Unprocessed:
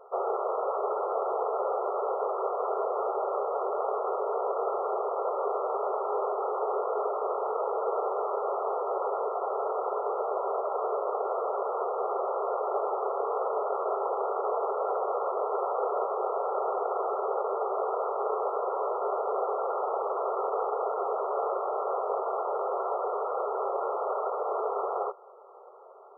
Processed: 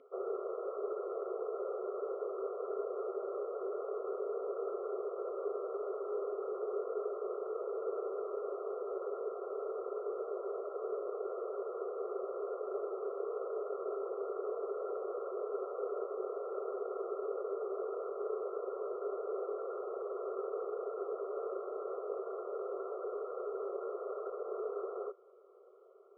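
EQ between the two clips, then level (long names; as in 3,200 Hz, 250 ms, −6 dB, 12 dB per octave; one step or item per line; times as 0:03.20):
formant filter i
+14.5 dB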